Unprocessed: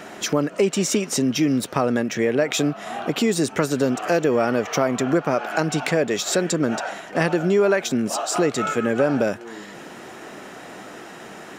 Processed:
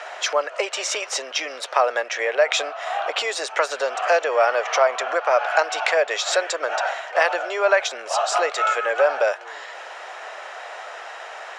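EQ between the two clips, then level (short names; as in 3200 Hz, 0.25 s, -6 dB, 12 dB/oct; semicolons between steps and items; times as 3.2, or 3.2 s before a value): steep high-pass 560 Hz 36 dB/oct; air absorption 100 m; +6.0 dB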